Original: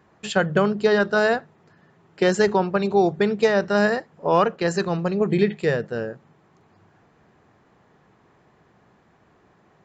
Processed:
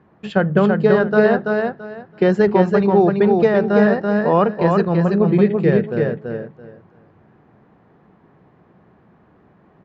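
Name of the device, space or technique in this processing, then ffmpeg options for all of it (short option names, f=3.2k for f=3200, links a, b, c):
phone in a pocket: -af "lowpass=3.6k,equalizer=f=200:t=o:w=1.6:g=4.5,highshelf=f=2k:g=-8,aecho=1:1:334|668|1002:0.668|0.14|0.0295,volume=2.5dB"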